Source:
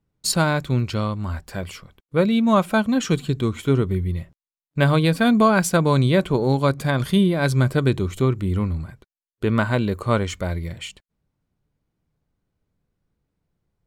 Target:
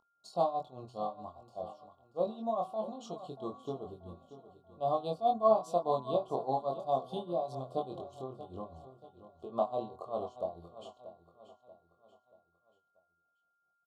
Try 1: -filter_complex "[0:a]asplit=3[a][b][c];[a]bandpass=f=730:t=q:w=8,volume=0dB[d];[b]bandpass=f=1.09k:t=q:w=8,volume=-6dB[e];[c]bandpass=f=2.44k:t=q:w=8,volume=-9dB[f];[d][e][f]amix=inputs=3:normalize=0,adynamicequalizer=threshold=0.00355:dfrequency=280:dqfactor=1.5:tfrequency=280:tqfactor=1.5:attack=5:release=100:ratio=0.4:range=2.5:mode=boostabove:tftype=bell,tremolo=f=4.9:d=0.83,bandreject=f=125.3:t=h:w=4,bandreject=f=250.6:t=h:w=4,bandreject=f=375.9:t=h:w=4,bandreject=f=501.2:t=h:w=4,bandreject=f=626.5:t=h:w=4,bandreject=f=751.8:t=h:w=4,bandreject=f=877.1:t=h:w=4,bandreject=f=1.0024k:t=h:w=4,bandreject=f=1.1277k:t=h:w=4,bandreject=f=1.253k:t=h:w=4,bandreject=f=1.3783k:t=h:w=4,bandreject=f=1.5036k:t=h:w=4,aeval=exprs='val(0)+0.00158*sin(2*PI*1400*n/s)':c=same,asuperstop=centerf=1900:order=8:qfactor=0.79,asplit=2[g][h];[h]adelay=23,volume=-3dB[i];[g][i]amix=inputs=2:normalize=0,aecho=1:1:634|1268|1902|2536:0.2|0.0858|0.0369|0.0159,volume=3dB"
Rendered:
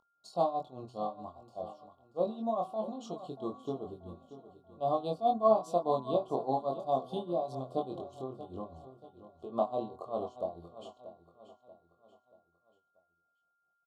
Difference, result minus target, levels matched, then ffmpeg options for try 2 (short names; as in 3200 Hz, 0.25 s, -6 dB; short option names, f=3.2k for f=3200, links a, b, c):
250 Hz band +2.5 dB
-filter_complex "[0:a]asplit=3[a][b][c];[a]bandpass=f=730:t=q:w=8,volume=0dB[d];[b]bandpass=f=1.09k:t=q:w=8,volume=-6dB[e];[c]bandpass=f=2.44k:t=q:w=8,volume=-9dB[f];[d][e][f]amix=inputs=3:normalize=0,tremolo=f=4.9:d=0.83,bandreject=f=125.3:t=h:w=4,bandreject=f=250.6:t=h:w=4,bandreject=f=375.9:t=h:w=4,bandreject=f=501.2:t=h:w=4,bandreject=f=626.5:t=h:w=4,bandreject=f=751.8:t=h:w=4,bandreject=f=877.1:t=h:w=4,bandreject=f=1.0024k:t=h:w=4,bandreject=f=1.1277k:t=h:w=4,bandreject=f=1.253k:t=h:w=4,bandreject=f=1.3783k:t=h:w=4,bandreject=f=1.5036k:t=h:w=4,aeval=exprs='val(0)+0.00158*sin(2*PI*1400*n/s)':c=same,asuperstop=centerf=1900:order=8:qfactor=0.79,asplit=2[g][h];[h]adelay=23,volume=-3dB[i];[g][i]amix=inputs=2:normalize=0,aecho=1:1:634|1268|1902|2536:0.2|0.0858|0.0369|0.0159,volume=3dB"